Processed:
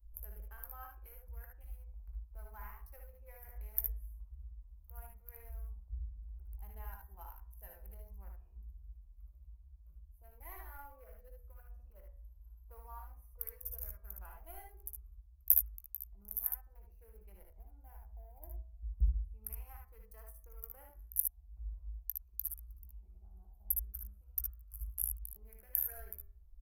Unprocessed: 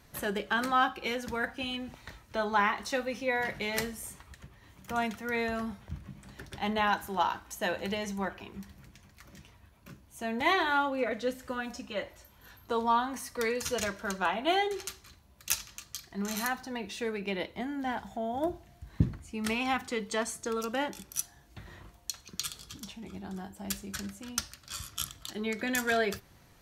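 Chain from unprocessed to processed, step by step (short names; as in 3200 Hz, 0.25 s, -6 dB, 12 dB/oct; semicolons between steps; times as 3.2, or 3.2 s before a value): Wiener smoothing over 25 samples; inverse Chebyshev band-stop 100–8000 Hz, stop band 40 dB; de-hum 80.93 Hz, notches 29; on a send: early reflections 19 ms -14 dB, 60 ms -7 dB, 74 ms -5 dB; on the sum: gain +12.5 dB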